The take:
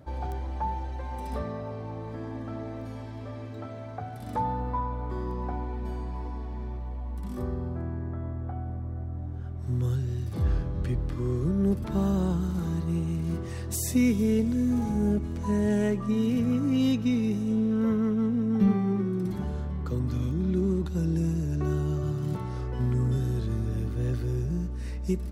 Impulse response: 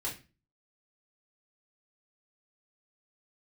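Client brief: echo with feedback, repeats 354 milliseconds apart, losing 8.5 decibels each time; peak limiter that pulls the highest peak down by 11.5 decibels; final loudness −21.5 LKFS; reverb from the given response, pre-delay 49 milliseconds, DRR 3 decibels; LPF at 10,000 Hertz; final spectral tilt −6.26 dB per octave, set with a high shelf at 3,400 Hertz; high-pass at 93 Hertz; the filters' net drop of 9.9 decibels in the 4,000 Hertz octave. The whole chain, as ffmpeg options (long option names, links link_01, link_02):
-filter_complex "[0:a]highpass=93,lowpass=10000,highshelf=frequency=3400:gain=-7.5,equalizer=frequency=4000:width_type=o:gain=-8.5,alimiter=level_in=1.5dB:limit=-24dB:level=0:latency=1,volume=-1.5dB,aecho=1:1:354|708|1062|1416:0.376|0.143|0.0543|0.0206,asplit=2[link_01][link_02];[1:a]atrim=start_sample=2205,adelay=49[link_03];[link_02][link_03]afir=irnorm=-1:irlink=0,volume=-5.5dB[link_04];[link_01][link_04]amix=inputs=2:normalize=0,volume=9dB"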